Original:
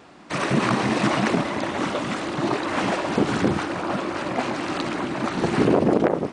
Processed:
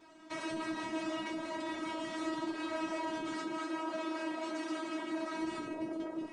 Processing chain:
0:03.33–0:05.41: high-pass filter 210 Hz 12 dB per octave
brickwall limiter −21.5 dBFS, peak gain reduction 16 dB
tuned comb filter 320 Hz, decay 0.25 s, harmonics all, mix 100%
level +5 dB

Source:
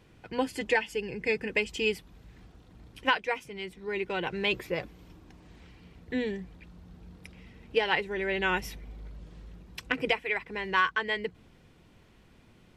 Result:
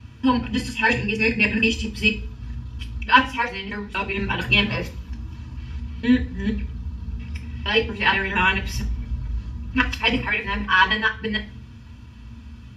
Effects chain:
reversed piece by piece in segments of 232 ms
parametric band 63 Hz −3.5 dB 1.7 octaves
convolution reverb RT60 0.35 s, pre-delay 3 ms, DRR 0.5 dB
level −1.5 dB

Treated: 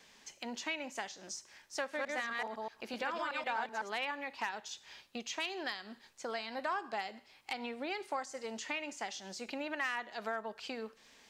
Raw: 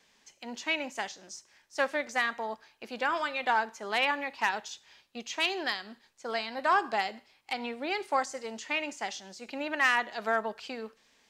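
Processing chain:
0:01.80–0:03.93: delay that plays each chunk backwards 126 ms, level −1 dB
downward compressor 2.5 to 1, threshold −46 dBFS, peak gain reduction 16.5 dB
level +4.5 dB

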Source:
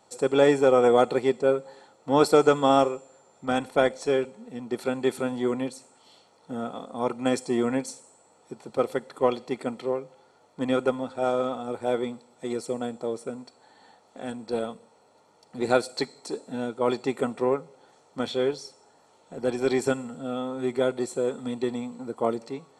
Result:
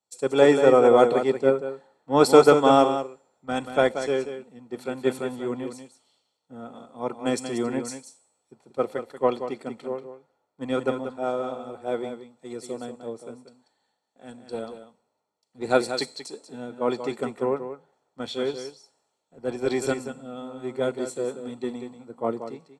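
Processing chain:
single-tap delay 187 ms −7 dB
multiband upward and downward expander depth 70%
level −2 dB

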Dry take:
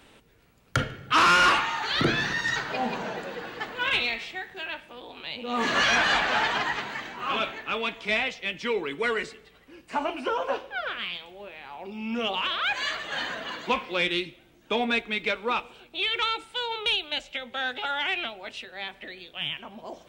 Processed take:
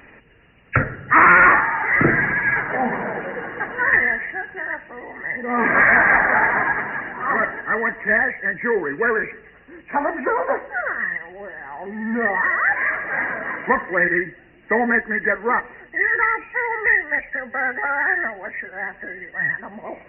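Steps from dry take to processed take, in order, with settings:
hearing-aid frequency compression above 1,600 Hz 4 to 1
pitch vibrato 14 Hz 41 cents
level +7 dB

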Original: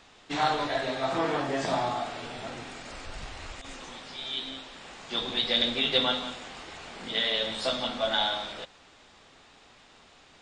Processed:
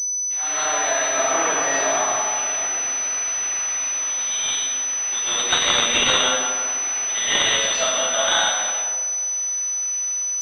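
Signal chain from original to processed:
first difference
automatic gain control gain up to 13 dB
convolution reverb RT60 1.8 s, pre-delay 95 ms, DRR −11.5 dB
switching amplifier with a slow clock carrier 6,000 Hz

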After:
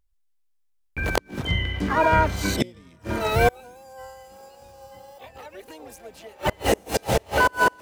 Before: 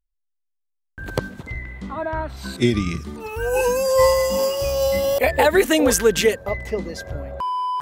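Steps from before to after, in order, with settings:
on a send: feedback delay with all-pass diffusion 942 ms, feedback 61%, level −10.5 dB
on the sum: pitch vibrato 1.4 Hz 8 cents
gate with flip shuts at −14 dBFS, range −33 dB
pitch-shifted copies added +7 semitones −2 dB
level +4.5 dB

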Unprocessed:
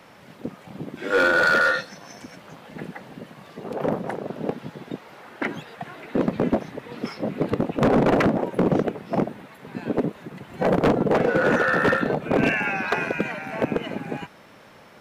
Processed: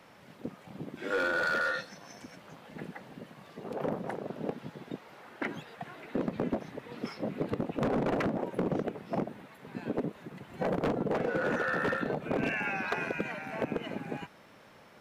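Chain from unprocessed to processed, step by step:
downward compressor, threshold −20 dBFS, peak gain reduction 4.5 dB
level −7 dB

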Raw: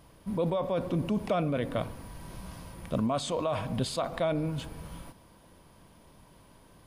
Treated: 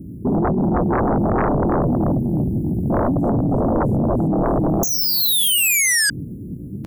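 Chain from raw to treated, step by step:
loose part that buzzes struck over −33 dBFS, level −38 dBFS
spectral tilt −4 dB per octave
in parallel at −1.5 dB: downward compressor 10 to 1, threshold −32 dBFS, peak gain reduction 17.5 dB
on the sum: inverse Chebyshev band-stop filter 720–4,500 Hz, stop band 80 dB
on a send: repeating echo 310 ms, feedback 55%, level −3 dB
on the sum: dynamic equaliser 500 Hz, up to −5 dB, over −50 dBFS, Q 2
pitch-shifted copies added −5 semitones −4 dB, +4 semitones −4 dB, +12 semitones −10 dB
sound drawn into the spectrogram fall, 0:04.83–0:06.10, 1,600–6,500 Hz −26 dBFS
Chebyshev high-pass filter 310 Hz, order 2
sine wavefolder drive 20 dB, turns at −14.5 dBFS

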